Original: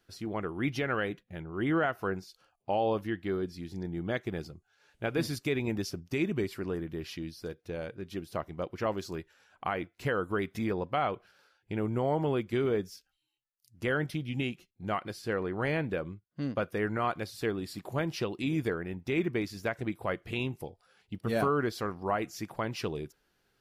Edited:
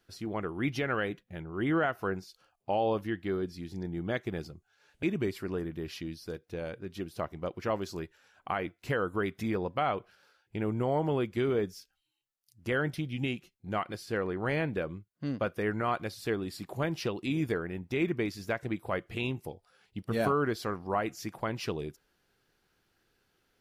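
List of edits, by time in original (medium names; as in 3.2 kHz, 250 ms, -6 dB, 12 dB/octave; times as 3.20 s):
5.03–6.19 s: delete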